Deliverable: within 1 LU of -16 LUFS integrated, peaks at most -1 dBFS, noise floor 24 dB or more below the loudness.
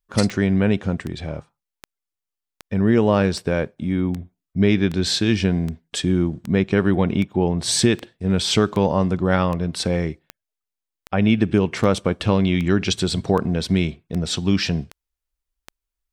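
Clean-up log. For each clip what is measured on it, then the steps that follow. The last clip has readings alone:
clicks 21; loudness -21.0 LUFS; peak -3.5 dBFS; loudness target -16.0 LUFS
-> de-click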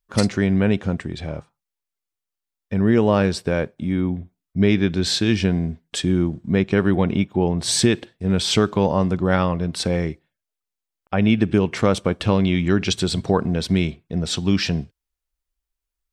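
clicks 0; loudness -21.0 LUFS; peak -3.5 dBFS; loudness target -16.0 LUFS
-> gain +5 dB; limiter -1 dBFS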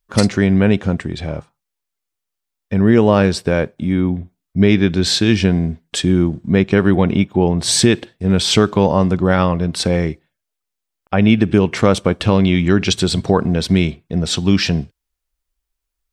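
loudness -16.0 LUFS; peak -1.0 dBFS; noise floor -80 dBFS

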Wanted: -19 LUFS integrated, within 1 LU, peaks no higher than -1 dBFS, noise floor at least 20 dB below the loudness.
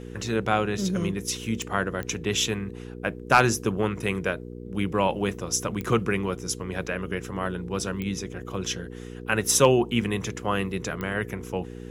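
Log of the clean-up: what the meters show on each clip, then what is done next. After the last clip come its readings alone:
clicks 5; hum 60 Hz; harmonics up to 480 Hz; hum level -36 dBFS; loudness -26.5 LUFS; peak -4.5 dBFS; loudness target -19.0 LUFS
-> de-click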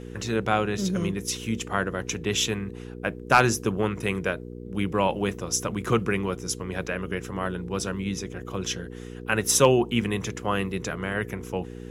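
clicks 0; hum 60 Hz; harmonics up to 480 Hz; hum level -36 dBFS
-> de-hum 60 Hz, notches 8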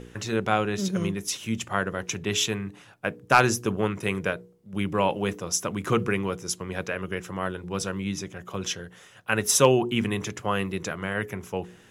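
hum none; loudness -27.0 LUFS; peak -4.5 dBFS; loudness target -19.0 LUFS
-> gain +8 dB; limiter -1 dBFS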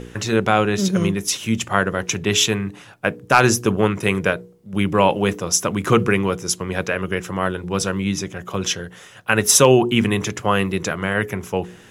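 loudness -19.5 LUFS; peak -1.0 dBFS; noise floor -45 dBFS

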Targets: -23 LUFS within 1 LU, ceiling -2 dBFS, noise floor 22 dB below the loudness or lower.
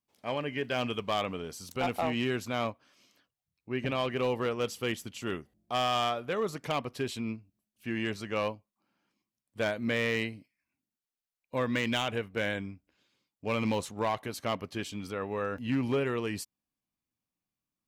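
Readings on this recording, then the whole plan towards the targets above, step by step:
clipped 0.7%; flat tops at -22.5 dBFS; loudness -32.5 LUFS; peak -22.5 dBFS; loudness target -23.0 LUFS
-> clip repair -22.5 dBFS; gain +9.5 dB

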